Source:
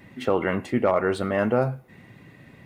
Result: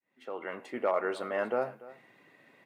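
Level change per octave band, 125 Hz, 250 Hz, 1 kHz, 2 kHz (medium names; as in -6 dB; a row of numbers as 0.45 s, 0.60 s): -24.5 dB, -15.5 dB, -7.0 dB, -8.0 dB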